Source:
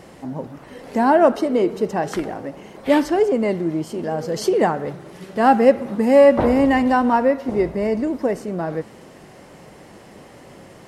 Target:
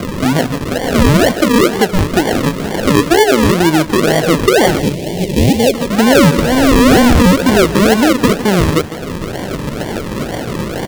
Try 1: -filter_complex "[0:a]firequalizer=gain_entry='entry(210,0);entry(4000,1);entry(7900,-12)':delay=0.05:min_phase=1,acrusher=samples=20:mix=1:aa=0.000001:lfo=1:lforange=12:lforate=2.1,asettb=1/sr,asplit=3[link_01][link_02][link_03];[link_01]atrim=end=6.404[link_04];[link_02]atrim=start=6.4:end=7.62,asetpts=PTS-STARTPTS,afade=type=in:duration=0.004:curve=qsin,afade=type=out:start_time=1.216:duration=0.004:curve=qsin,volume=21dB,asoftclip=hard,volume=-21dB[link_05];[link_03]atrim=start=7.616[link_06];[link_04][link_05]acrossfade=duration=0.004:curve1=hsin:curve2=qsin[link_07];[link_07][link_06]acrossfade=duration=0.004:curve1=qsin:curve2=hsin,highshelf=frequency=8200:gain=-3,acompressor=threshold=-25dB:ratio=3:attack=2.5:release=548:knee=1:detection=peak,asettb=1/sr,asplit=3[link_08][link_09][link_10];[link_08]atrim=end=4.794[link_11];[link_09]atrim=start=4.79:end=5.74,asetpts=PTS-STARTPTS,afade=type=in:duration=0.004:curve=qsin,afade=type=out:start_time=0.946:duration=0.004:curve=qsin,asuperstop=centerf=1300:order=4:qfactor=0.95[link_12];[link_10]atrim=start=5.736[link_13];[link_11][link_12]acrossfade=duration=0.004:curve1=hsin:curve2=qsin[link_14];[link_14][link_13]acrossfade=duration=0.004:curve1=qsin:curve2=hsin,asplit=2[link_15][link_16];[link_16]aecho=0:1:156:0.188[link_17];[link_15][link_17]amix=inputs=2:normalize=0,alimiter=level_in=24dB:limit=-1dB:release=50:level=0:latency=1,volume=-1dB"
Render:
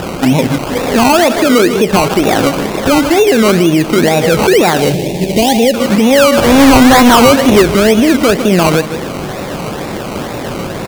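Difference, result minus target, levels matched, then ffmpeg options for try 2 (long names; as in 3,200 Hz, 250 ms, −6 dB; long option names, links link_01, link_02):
sample-and-hold swept by an LFO: distortion −16 dB; downward compressor: peak gain reduction −5.5 dB
-filter_complex "[0:a]firequalizer=gain_entry='entry(210,0);entry(4000,1);entry(7900,-12)':delay=0.05:min_phase=1,acrusher=samples=48:mix=1:aa=0.000001:lfo=1:lforange=28.8:lforate=2.1,asettb=1/sr,asplit=3[link_01][link_02][link_03];[link_01]atrim=end=6.404[link_04];[link_02]atrim=start=6.4:end=7.62,asetpts=PTS-STARTPTS,afade=type=in:duration=0.004:curve=qsin,afade=type=out:start_time=1.216:duration=0.004:curve=qsin,volume=21dB,asoftclip=hard,volume=-21dB[link_05];[link_03]atrim=start=7.616[link_06];[link_04][link_05]acrossfade=duration=0.004:curve1=hsin:curve2=qsin[link_07];[link_07][link_06]acrossfade=duration=0.004:curve1=qsin:curve2=hsin,highshelf=frequency=8200:gain=-3,acompressor=threshold=-33dB:ratio=3:attack=2.5:release=548:knee=1:detection=peak,asettb=1/sr,asplit=3[link_08][link_09][link_10];[link_08]atrim=end=4.794[link_11];[link_09]atrim=start=4.79:end=5.74,asetpts=PTS-STARTPTS,afade=type=in:duration=0.004:curve=qsin,afade=type=out:start_time=0.946:duration=0.004:curve=qsin,asuperstop=centerf=1300:order=4:qfactor=0.95[link_12];[link_10]atrim=start=5.736[link_13];[link_11][link_12]acrossfade=duration=0.004:curve1=hsin:curve2=qsin[link_14];[link_14][link_13]acrossfade=duration=0.004:curve1=qsin:curve2=hsin,asplit=2[link_15][link_16];[link_16]aecho=0:1:156:0.188[link_17];[link_15][link_17]amix=inputs=2:normalize=0,alimiter=level_in=24dB:limit=-1dB:release=50:level=0:latency=1,volume=-1dB"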